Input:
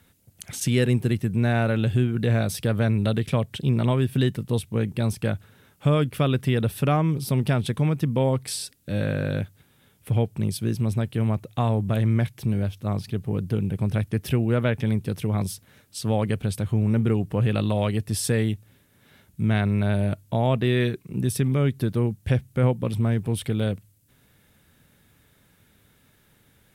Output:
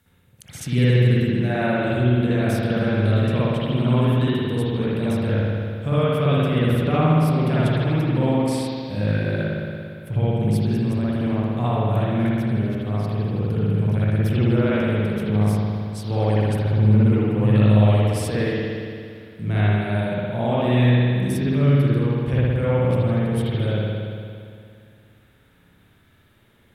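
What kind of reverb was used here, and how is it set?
spring reverb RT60 2.3 s, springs 57 ms, chirp 25 ms, DRR −10 dB
level −6.5 dB

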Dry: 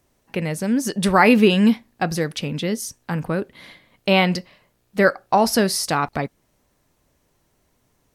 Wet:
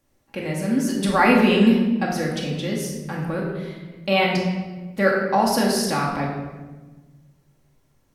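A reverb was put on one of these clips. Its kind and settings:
rectangular room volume 940 cubic metres, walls mixed, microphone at 2.3 metres
level −6.5 dB

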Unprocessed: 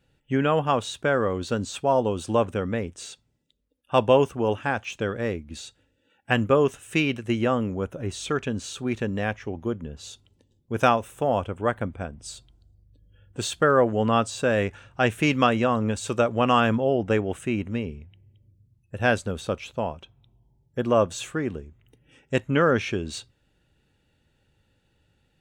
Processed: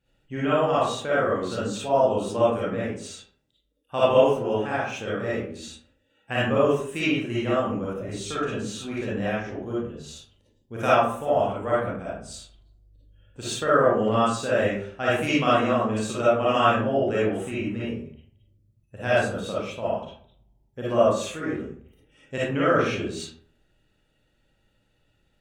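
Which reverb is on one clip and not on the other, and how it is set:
comb and all-pass reverb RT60 0.55 s, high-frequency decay 0.55×, pre-delay 15 ms, DRR −9.5 dB
level −9.5 dB

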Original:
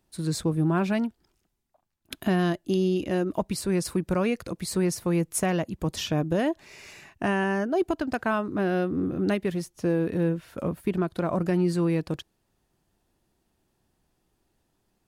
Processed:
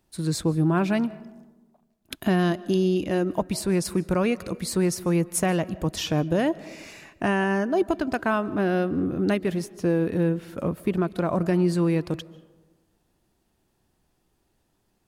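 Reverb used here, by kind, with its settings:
comb and all-pass reverb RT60 1.3 s, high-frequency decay 0.35×, pre-delay 105 ms, DRR 19.5 dB
level +2 dB

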